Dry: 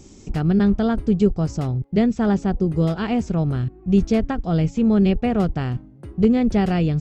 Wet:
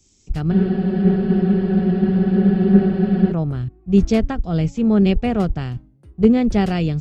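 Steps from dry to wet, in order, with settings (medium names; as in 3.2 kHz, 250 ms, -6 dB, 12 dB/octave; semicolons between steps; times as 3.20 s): spectral freeze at 0.54 s, 2.76 s; three bands expanded up and down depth 70%; trim +1.5 dB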